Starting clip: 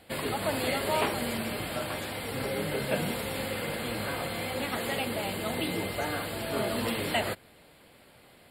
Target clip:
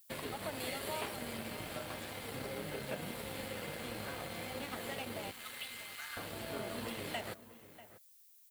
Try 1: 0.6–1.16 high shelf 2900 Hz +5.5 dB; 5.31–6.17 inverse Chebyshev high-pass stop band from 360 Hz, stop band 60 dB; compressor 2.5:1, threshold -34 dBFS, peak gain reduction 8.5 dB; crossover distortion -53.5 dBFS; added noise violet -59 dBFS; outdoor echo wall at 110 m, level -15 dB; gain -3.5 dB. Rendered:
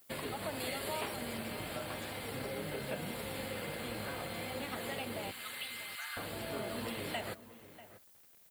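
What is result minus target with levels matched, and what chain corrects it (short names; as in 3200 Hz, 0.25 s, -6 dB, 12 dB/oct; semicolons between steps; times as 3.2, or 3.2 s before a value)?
crossover distortion: distortion -9 dB
0.6–1.16 high shelf 2900 Hz +5.5 dB; 5.31–6.17 inverse Chebyshev high-pass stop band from 360 Hz, stop band 60 dB; compressor 2.5:1, threshold -34 dBFS, peak gain reduction 8.5 dB; crossover distortion -44 dBFS; added noise violet -59 dBFS; outdoor echo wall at 110 m, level -15 dB; gain -3.5 dB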